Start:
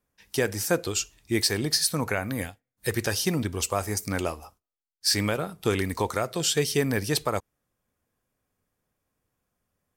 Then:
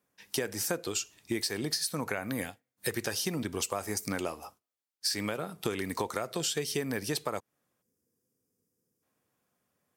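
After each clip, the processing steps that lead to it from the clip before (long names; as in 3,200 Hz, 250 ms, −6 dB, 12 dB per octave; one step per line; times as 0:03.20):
gain on a spectral selection 0:07.82–0:09.03, 520–4,700 Hz −15 dB
high-pass filter 150 Hz 12 dB per octave
downward compressor, threshold −31 dBFS, peak gain reduction 12.5 dB
level +2 dB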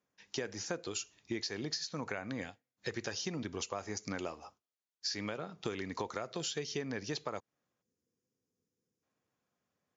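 linear-phase brick-wall low-pass 7,300 Hz
level −5.5 dB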